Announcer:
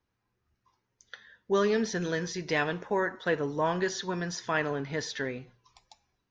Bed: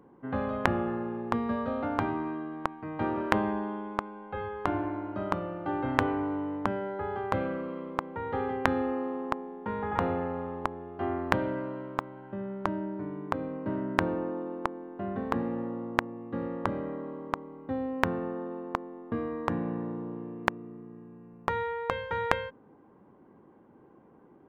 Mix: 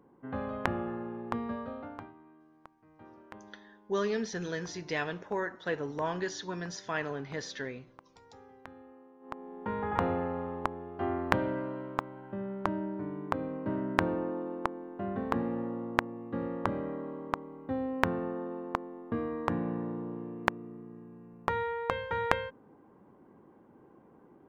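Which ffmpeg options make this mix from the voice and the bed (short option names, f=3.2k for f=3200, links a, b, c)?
-filter_complex "[0:a]adelay=2400,volume=-5dB[a];[1:a]volume=17.5dB,afade=t=out:st=1.43:d=0.7:silence=0.11885,afade=t=in:st=9.2:d=0.45:silence=0.0749894[b];[a][b]amix=inputs=2:normalize=0"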